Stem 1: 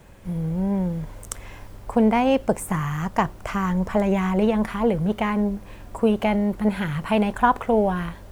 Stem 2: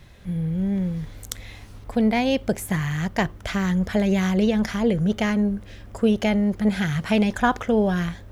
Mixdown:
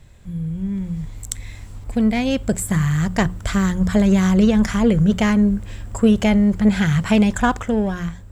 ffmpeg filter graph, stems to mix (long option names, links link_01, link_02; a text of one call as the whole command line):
ffmpeg -i stem1.wav -i stem2.wav -filter_complex "[0:a]highpass=330,asoftclip=type=tanh:threshold=-22.5dB,volume=-12dB[link_01];[1:a]lowshelf=frequency=190:gain=10,volume=-5.5dB[link_02];[link_01][link_02]amix=inputs=2:normalize=0,equalizer=frequency=7600:width=5.4:gain=14,bandreject=frequency=60:width_type=h:width=6,bandreject=frequency=120:width_type=h:width=6,bandreject=frequency=180:width_type=h:width=6,dynaudnorm=framelen=300:gausssize=7:maxgain=8dB" out.wav